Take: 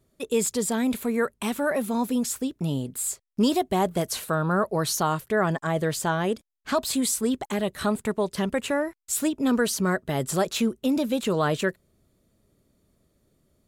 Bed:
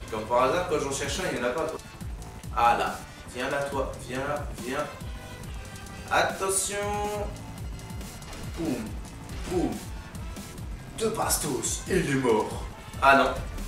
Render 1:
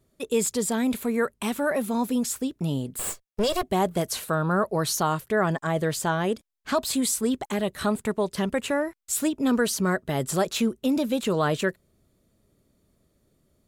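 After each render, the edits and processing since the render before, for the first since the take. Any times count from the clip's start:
0:02.99–0:03.63: lower of the sound and its delayed copy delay 1.8 ms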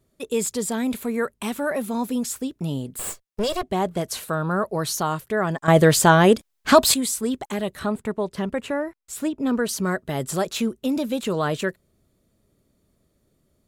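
0:03.55–0:04.11: high-shelf EQ 10,000 Hz −11 dB
0:05.68–0:06.94: clip gain +11 dB
0:07.79–0:09.69: high-shelf EQ 3,300 Hz −9 dB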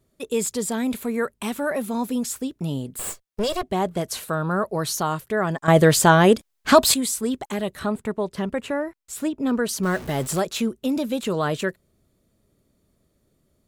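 0:09.83–0:10.40: converter with a step at zero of −31.5 dBFS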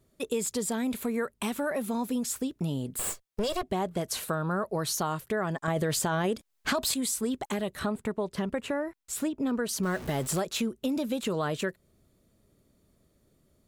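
brickwall limiter −10 dBFS, peak gain reduction 8.5 dB
downward compressor 3 to 1, threshold −28 dBFS, peak gain reduction 10.5 dB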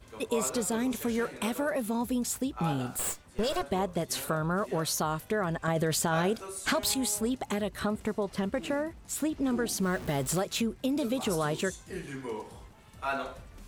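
mix in bed −14 dB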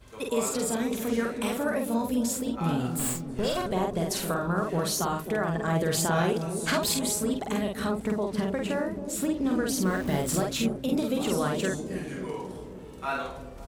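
double-tracking delay 48 ms −3 dB
on a send: delay with a low-pass on its return 269 ms, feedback 65%, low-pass 490 Hz, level −6 dB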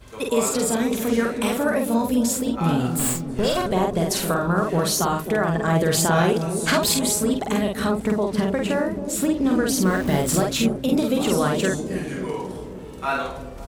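level +6.5 dB

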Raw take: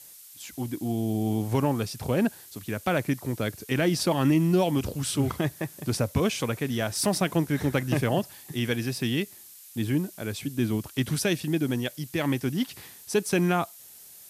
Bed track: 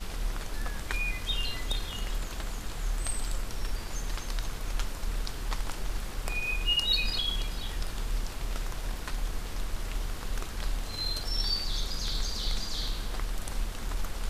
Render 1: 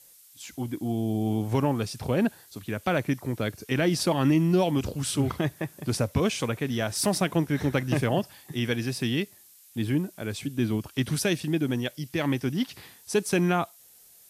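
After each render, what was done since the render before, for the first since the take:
noise reduction from a noise print 6 dB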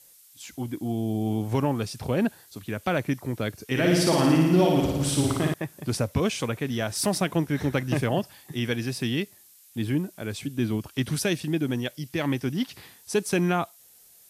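0:03.66–0:05.54: flutter between parallel walls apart 9.7 metres, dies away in 1.2 s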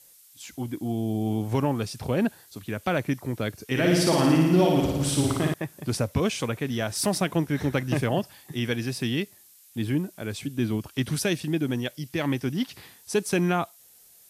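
no processing that can be heard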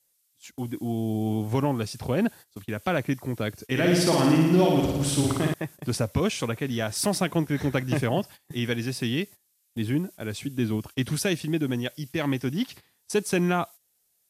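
noise gate −41 dBFS, range −16 dB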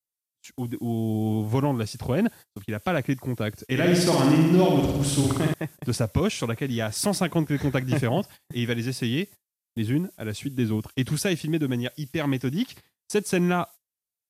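noise gate with hold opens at −40 dBFS
low-shelf EQ 170 Hz +3.5 dB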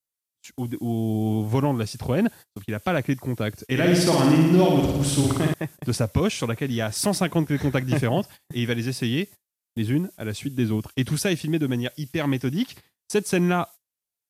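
level +1.5 dB

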